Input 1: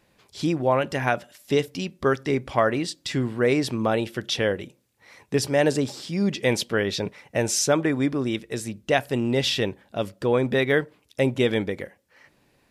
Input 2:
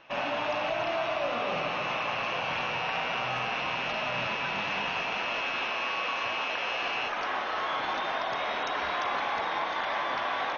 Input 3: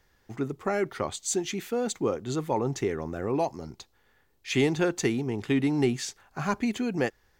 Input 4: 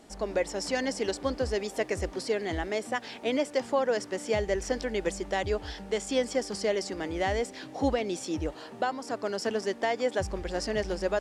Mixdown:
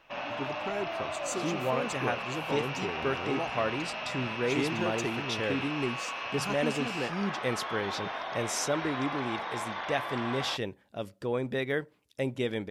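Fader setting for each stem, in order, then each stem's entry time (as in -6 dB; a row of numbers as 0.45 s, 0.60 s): -9.5 dB, -5.5 dB, -8.0 dB, mute; 1.00 s, 0.00 s, 0.00 s, mute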